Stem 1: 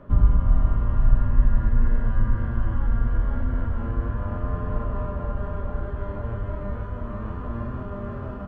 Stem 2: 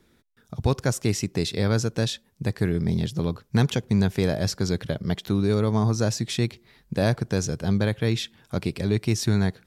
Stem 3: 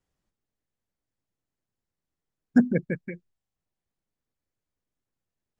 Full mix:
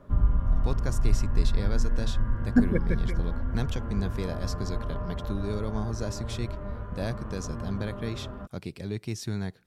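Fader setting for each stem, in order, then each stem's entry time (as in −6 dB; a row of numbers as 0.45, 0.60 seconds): −5.5, −10.0, −2.0 decibels; 0.00, 0.00, 0.00 seconds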